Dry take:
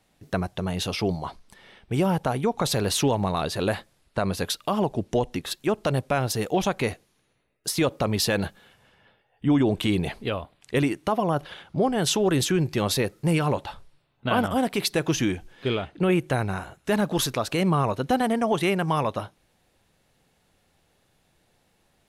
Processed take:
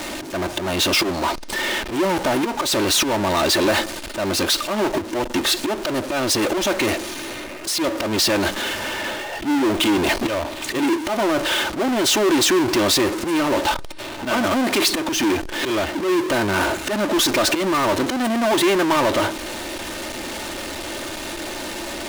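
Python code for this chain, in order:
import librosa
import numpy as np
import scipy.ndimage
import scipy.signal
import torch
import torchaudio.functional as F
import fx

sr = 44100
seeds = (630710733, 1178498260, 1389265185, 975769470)

p1 = fx.auto_swell(x, sr, attack_ms=605.0)
p2 = fx.over_compress(p1, sr, threshold_db=-35.0, ratio=-1.0)
p3 = p1 + (p2 * 10.0 ** (0.5 / 20.0))
p4 = scipy.signal.sosfilt(scipy.signal.butter(2, 8800.0, 'lowpass', fs=sr, output='sos'), p3)
p5 = fx.peak_eq(p4, sr, hz=340.0, db=7.0, octaves=0.62)
p6 = p5 + 0.7 * np.pad(p5, (int(3.3 * sr / 1000.0), 0))[:len(p5)]
p7 = fx.power_curve(p6, sr, exponent=0.35)
p8 = fx.low_shelf(p7, sr, hz=210.0, db=-10.5)
y = p8 * 10.0 ** (-3.5 / 20.0)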